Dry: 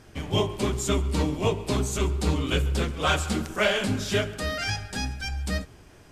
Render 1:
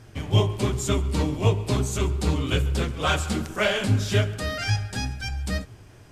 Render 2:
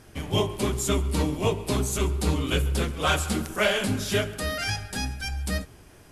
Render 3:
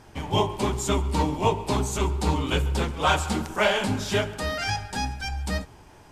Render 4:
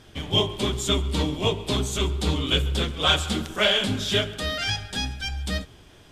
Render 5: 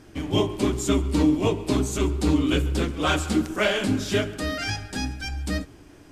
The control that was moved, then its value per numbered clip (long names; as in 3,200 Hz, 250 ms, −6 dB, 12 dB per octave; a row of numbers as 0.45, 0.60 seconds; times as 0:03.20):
parametric band, centre frequency: 110, 11,000, 890, 3,400, 300 Hertz